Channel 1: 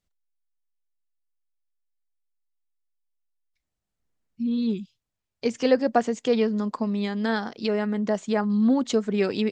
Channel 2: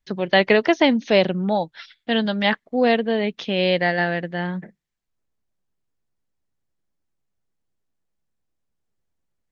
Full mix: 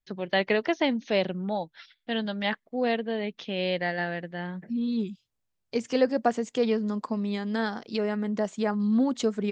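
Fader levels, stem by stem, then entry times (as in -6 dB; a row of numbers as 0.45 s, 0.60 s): -3.0 dB, -8.5 dB; 0.30 s, 0.00 s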